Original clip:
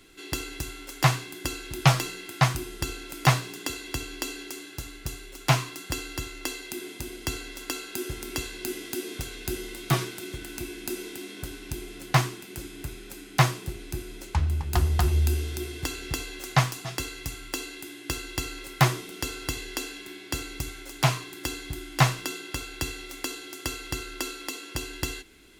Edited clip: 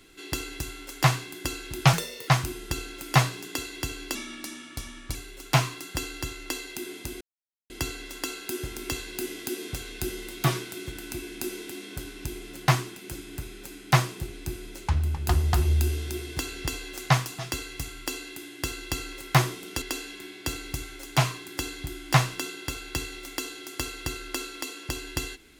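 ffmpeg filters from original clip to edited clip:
-filter_complex "[0:a]asplit=7[a][b][c][d][e][f][g];[a]atrim=end=1.934[h];[b]atrim=start=1.93:end=2.39,asetpts=PTS-STARTPTS,asetrate=58212,aresample=44100,atrim=end_sample=15368,asetpts=PTS-STARTPTS[i];[c]atrim=start=2.386:end=4.264[j];[d]atrim=start=4.26:end=5.1,asetpts=PTS-STARTPTS,asetrate=37044,aresample=44100[k];[e]atrim=start=5.096:end=7.16,asetpts=PTS-STARTPTS,afade=t=out:st=2.06:d=0.004:c=hsin,apad=pad_dur=0.49[l];[f]atrim=start=7.16:end=19.282,asetpts=PTS-STARTPTS,afade=t=in:d=0.004:c=hsin[m];[g]atrim=start=19.678[n];[h][i]acrossfade=d=0.004:c1=hsin:c2=hsin[o];[o][j]acrossfade=d=0.004:c1=hsin:c2=hsin[p];[p][k]acrossfade=d=0.004:c1=hsin:c2=hsin[q];[l][m]concat=n=2:v=0:a=1[r];[q][r]acrossfade=d=0.004:c1=hsin:c2=hsin[s];[s][n]acrossfade=d=0.004:c1=hsin:c2=hsin"

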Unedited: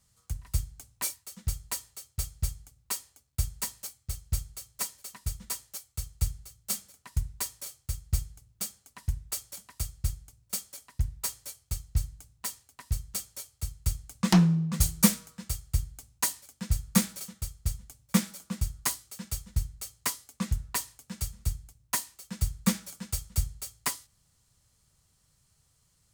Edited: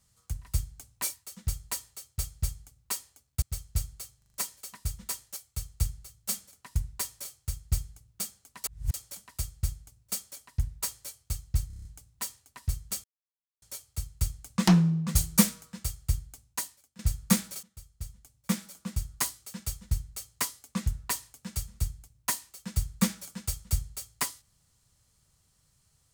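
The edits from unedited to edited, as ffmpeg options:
-filter_complex "[0:a]asplit=17[a][b][c][d][e][f][g][h][i][j][k][l][m][n][o][p][q];[a]atrim=end=3.422[r];[b]atrim=start=3.988:end=4.792[s];[c]atrim=start=4.748:end=4.792[t];[d]atrim=start=4.748:end=4.792[u];[e]atrim=start=4.748:end=4.792[v];[f]atrim=start=4.748:end=9.052[w];[g]atrim=start=9.048:end=9.352,asetpts=PTS-STARTPTS,areverse[x];[h]atrim=start=9.348:end=12.112[y];[i]atrim=start=12.078:end=12.112[z];[j]atrim=start=12.078:end=12.112[aa];[k]atrim=start=12.078:end=12.112[ab];[l]atrim=start=12.078:end=12.112[ac];[m]atrim=start=12.078:end=12.112[ad];[n]atrim=start=12.078:end=13.27,asetpts=PTS-STARTPTS,afade=t=out:st=1.188:d=0.004:c=hsin,apad=pad_dur=0.58[ae];[o]atrim=start=13.27:end=16.64,asetpts=PTS-STARTPTS,afade=t=in:d=0.004:c=hsin,afade=t=out:st=2.53:d=0.84:silence=0.105925[af];[p]atrim=start=16.64:end=17.28,asetpts=PTS-STARTPTS,afade=t=in:d=0.004:c=hsin:silence=0.105925,afade=t=out:st=0.636:d=0.004:c=hsin:silence=0.149624[ag];[q]atrim=start=17.28,asetpts=PTS-STARTPTS,afade=t=in:d=1.65:silence=0.149624[ah];[r][s]acrossfade=d=0.004:c1=hsin:c2=hsin[ai];[ai][t]acrossfade=d=0.004:c1=hsin:c2=hsin[aj];[aj][u]acrossfade=d=0.004:c1=hsin:c2=hsin[ak];[ak][v]acrossfade=d=0.004:c1=hsin:c2=hsin[al];[al][w]acrossfade=d=0.004:c1=hsin:c2=hsin[am];[am][x]acrossfade=d=0.004:c1=hsin:c2=hsin[an];[an][y]acrossfade=d=0.004:c1=hsin:c2=hsin[ao];[ao][z]acrossfade=d=0.004:c1=hsin:c2=hsin[ap];[ap][aa]acrossfade=d=0.004:c1=hsin:c2=hsin[aq];[aq][ab]acrossfade=d=0.004:c1=hsin:c2=hsin[ar];[ar][ac]acrossfade=d=0.004:c1=hsin:c2=hsin[as];[as][ad]acrossfade=d=0.004:c1=hsin:c2=hsin[at];[ae][af][ag][ah]concat=n=4:v=0:a=1[au];[at][au]acrossfade=d=0.004:c1=hsin:c2=hsin"

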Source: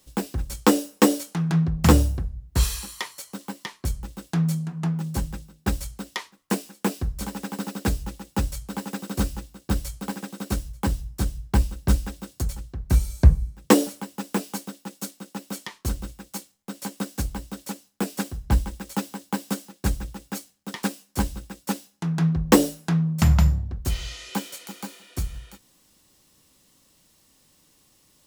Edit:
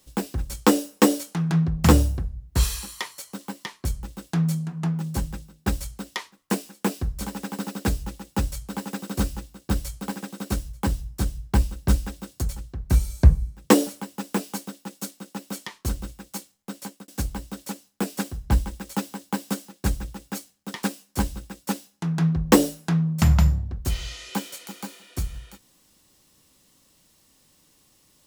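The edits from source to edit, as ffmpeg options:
-filter_complex "[0:a]asplit=2[a][b];[a]atrim=end=17.08,asetpts=PTS-STARTPTS,afade=t=out:st=16.74:d=0.34[c];[b]atrim=start=17.08,asetpts=PTS-STARTPTS,afade=t=in:d=0.004:c=hsin[d];[c][d]concat=n=2:v=0:a=1"

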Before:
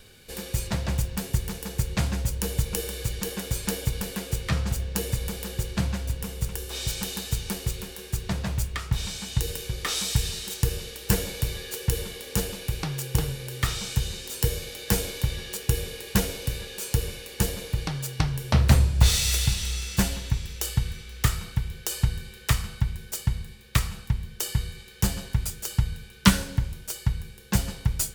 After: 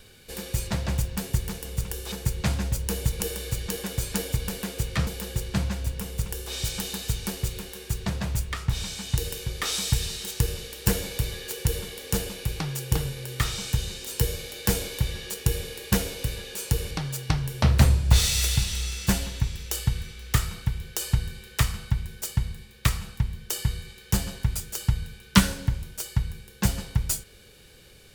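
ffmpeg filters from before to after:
-filter_complex "[0:a]asplit=5[a][b][c][d][e];[a]atrim=end=1.652[f];[b]atrim=start=6.288:end=6.762[g];[c]atrim=start=1.648:end=4.602[h];[d]atrim=start=5.298:end=17.142[i];[e]atrim=start=17.808[j];[f][g]acrossfade=d=0.004:c1=hsin:c2=hsin[k];[k][h]acrossfade=d=0.004:c1=hsin:c2=hsin[l];[l][i]acrossfade=d=0.004:c1=hsin:c2=hsin[m];[m][j]acrossfade=d=0.004:c1=hsin:c2=hsin"

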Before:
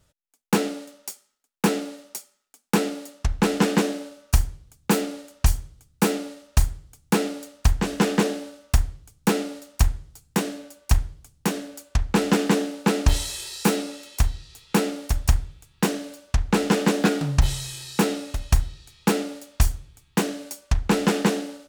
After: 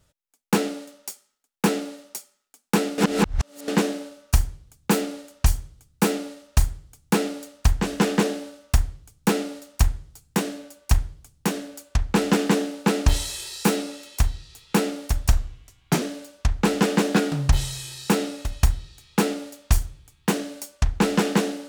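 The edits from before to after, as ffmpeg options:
-filter_complex "[0:a]asplit=5[a][b][c][d][e];[a]atrim=end=2.982[f];[b]atrim=start=2.978:end=3.682,asetpts=PTS-STARTPTS,areverse[g];[c]atrim=start=3.678:end=15.304[h];[d]atrim=start=15.3:end=15.91,asetpts=PTS-STARTPTS,asetrate=37485,aresample=44100,atrim=end_sample=31648,asetpts=PTS-STARTPTS[i];[e]atrim=start=15.906[j];[f][g]acrossfade=d=0.004:c1=hsin:c2=hsin[k];[k][h]acrossfade=d=0.004:c1=hsin:c2=hsin[l];[l][i]acrossfade=d=0.004:c1=hsin:c2=hsin[m];[m][j]acrossfade=d=0.004:c1=hsin:c2=hsin"

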